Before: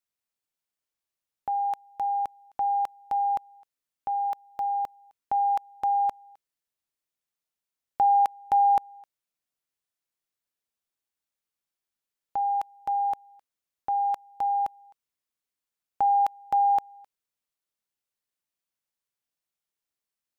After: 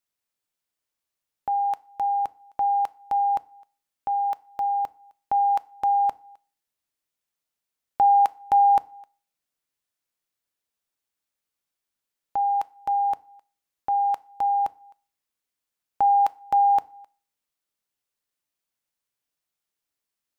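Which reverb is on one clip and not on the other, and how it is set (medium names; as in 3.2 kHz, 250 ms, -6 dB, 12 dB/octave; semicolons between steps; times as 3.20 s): FDN reverb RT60 0.43 s, low-frequency decay 1.05×, high-frequency decay 0.85×, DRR 17.5 dB; trim +3 dB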